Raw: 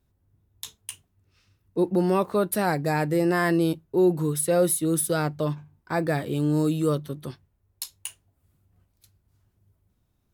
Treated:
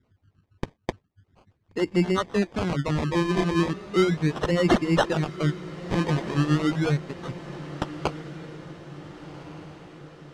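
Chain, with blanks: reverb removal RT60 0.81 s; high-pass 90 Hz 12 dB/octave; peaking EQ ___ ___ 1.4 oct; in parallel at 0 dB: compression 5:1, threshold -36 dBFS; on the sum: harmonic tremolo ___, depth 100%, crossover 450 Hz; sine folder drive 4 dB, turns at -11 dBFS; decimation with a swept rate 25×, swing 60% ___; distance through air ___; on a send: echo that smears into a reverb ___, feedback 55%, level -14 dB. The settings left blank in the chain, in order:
740 Hz, -11.5 dB, 7.5 Hz, 0.37 Hz, 100 m, 1462 ms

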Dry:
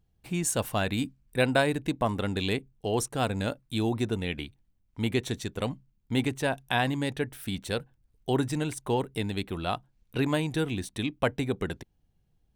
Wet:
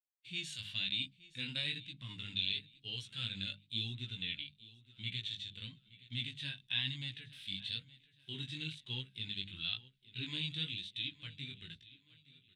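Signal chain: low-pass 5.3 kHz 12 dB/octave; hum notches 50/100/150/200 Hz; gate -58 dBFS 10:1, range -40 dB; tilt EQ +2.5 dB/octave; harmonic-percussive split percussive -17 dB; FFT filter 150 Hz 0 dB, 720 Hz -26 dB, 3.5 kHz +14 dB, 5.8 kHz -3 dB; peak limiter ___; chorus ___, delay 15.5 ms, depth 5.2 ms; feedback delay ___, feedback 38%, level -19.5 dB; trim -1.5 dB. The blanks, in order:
-18.5 dBFS, 1 Hz, 869 ms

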